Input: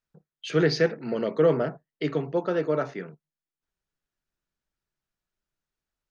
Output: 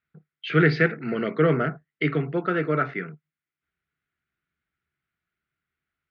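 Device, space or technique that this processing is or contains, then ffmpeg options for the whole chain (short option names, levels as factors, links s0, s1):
guitar cabinet: -af "highpass=77,equalizer=f=78:t=q:w=4:g=9,equalizer=f=150:t=q:w=4:g=4,equalizer=f=550:t=q:w=4:g=-9,equalizer=f=910:t=q:w=4:g=-9,equalizer=f=1400:t=q:w=4:g=8,equalizer=f=2100:t=q:w=4:g=9,lowpass=f=3500:w=0.5412,lowpass=f=3500:w=1.3066,volume=1.41"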